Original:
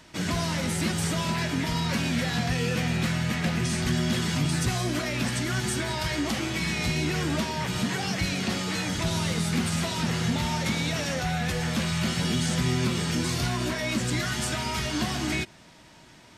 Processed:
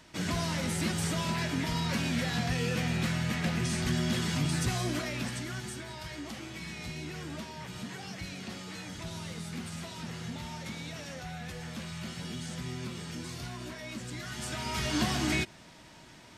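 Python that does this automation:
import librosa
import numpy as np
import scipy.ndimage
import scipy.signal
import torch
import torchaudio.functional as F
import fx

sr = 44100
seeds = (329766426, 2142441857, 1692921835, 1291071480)

y = fx.gain(x, sr, db=fx.line((4.9, -4.0), (5.83, -13.0), (14.17, -13.0), (14.95, -1.0)))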